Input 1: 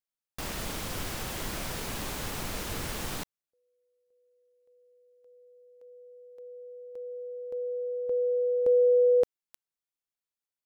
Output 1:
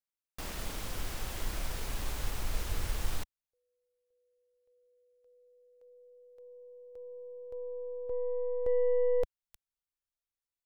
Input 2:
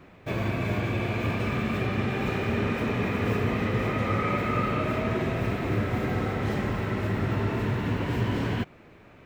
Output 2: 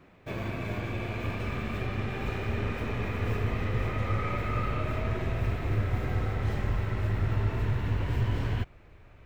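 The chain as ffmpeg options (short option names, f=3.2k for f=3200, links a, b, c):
-af "aeval=exprs='0.211*(cos(1*acos(clip(val(0)/0.211,-1,1)))-cos(1*PI/2))+0.00531*(cos(6*acos(clip(val(0)/0.211,-1,1)))-cos(6*PI/2))':c=same,asubboost=boost=8:cutoff=73,volume=-5.5dB"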